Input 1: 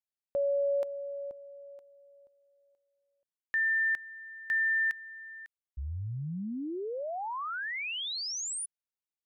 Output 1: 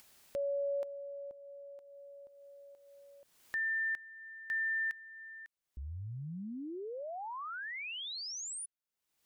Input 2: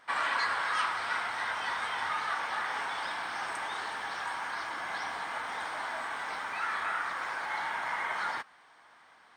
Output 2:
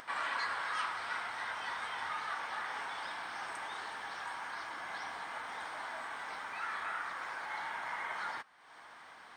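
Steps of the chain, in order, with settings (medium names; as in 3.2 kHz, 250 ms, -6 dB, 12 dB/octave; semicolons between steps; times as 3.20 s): upward compressor 4:1, threshold -40 dBFS; trim -6 dB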